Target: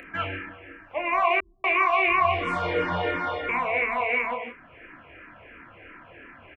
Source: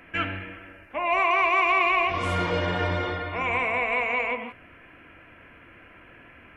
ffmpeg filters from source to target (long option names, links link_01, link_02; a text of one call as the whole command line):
ffmpeg -i in.wav -filter_complex "[0:a]bass=frequency=250:gain=-4,treble=frequency=4000:gain=-12,acompressor=mode=upward:threshold=-42dB:ratio=2.5,asplit=2[link_01][link_02];[link_02]adelay=29,volume=-7dB[link_03];[link_01][link_03]amix=inputs=2:normalize=0,asettb=1/sr,asplit=3[link_04][link_05][link_06];[link_04]atrim=end=1.404[link_07];[link_05]atrim=start=1.4:end=3.49,asetpts=PTS-STARTPTS,afade=type=in:duration=0.004:curve=qsin,afade=type=out:start_time=2.086:duration=0.004:curve=qsin,acrossover=split=170[link_08][link_09];[link_09]adelay=240[link_10];[link_08][link_10]amix=inputs=2:normalize=0,atrim=end_sample=92169[link_11];[link_06]atrim=start=3.486[link_12];[link_07][link_11]acrossfade=duration=0.004:curve1=hsin:curve2=qsin[link_13];[link_13][link_12]acrossfade=duration=0.004:curve1=qsin:curve2=hsin,asplit=2[link_14][link_15];[link_15]afreqshift=-2.9[link_16];[link_14][link_16]amix=inputs=2:normalize=1,volume=3dB" out.wav